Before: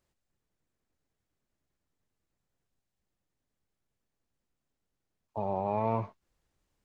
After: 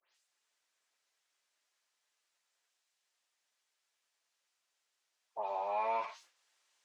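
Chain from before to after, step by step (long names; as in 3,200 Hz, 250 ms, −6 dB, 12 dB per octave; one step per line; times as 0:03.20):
every frequency bin delayed by itself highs late, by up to 143 ms
in parallel at −1 dB: downward compressor, threshold −42 dBFS, peak gain reduction 15 dB
on the sum: high-pass filter 690 Hz 12 dB per octave
spectral tilt +4 dB per octave
flanger 0.55 Hz, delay 7.7 ms, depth 1.7 ms, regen −63%
high-frequency loss of the air 81 metres
level that may fall only so fast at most 130 dB per second
level +4.5 dB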